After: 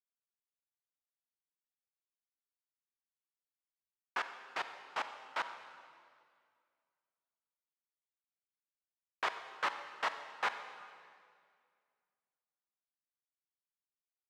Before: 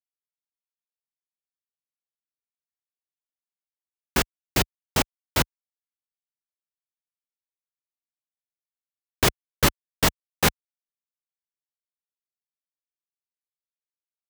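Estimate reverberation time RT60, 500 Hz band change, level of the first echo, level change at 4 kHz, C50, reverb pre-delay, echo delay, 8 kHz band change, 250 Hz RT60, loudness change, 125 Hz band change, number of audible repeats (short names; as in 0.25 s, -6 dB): 2.1 s, -17.5 dB, none, -17.5 dB, 9.0 dB, 35 ms, none, -28.5 dB, 2.3 s, -14.5 dB, under -40 dB, none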